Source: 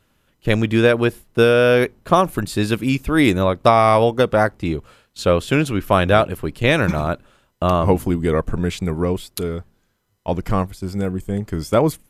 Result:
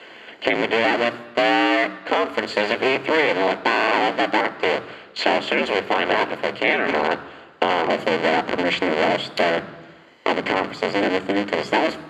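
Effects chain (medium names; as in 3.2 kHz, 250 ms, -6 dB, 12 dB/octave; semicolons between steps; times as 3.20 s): cycle switcher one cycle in 2, inverted; Bessel low-pass 6.6 kHz, order 2; peaking EQ 1.4 kHz +6 dB 0.93 oct; level rider; peak limiter -9.5 dBFS, peak gain reduction 8.5 dB; high-pass 200 Hz 12 dB/octave; reverberation RT60 0.85 s, pre-delay 3 ms, DRR 13 dB; three bands compressed up and down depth 70%; trim -8 dB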